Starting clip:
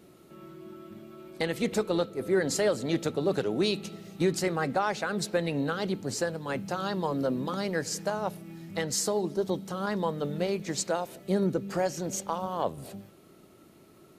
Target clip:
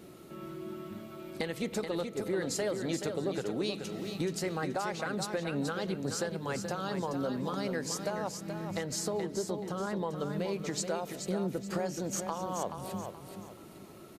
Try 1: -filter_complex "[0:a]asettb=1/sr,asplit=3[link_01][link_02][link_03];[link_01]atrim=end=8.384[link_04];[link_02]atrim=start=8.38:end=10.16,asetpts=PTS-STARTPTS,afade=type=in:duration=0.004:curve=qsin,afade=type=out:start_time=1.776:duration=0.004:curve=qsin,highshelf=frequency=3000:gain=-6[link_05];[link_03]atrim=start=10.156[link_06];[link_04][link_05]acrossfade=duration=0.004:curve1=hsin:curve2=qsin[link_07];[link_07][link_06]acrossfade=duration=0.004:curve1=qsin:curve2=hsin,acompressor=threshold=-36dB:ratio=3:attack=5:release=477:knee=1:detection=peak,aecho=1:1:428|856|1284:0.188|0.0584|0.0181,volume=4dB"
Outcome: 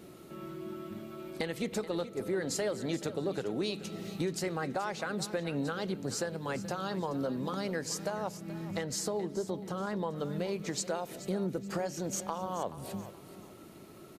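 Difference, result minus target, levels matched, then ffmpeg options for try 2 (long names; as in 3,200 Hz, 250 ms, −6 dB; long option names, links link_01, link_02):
echo-to-direct −7.5 dB
-filter_complex "[0:a]asettb=1/sr,asplit=3[link_01][link_02][link_03];[link_01]atrim=end=8.384[link_04];[link_02]atrim=start=8.38:end=10.16,asetpts=PTS-STARTPTS,afade=type=in:duration=0.004:curve=qsin,afade=type=out:start_time=1.776:duration=0.004:curve=qsin,highshelf=frequency=3000:gain=-6[link_05];[link_03]atrim=start=10.156[link_06];[link_04][link_05]acrossfade=duration=0.004:curve1=hsin:curve2=qsin[link_07];[link_07][link_06]acrossfade=duration=0.004:curve1=qsin:curve2=hsin,acompressor=threshold=-36dB:ratio=3:attack=5:release=477:knee=1:detection=peak,aecho=1:1:428|856|1284|1712:0.447|0.138|0.0429|0.0133,volume=4dB"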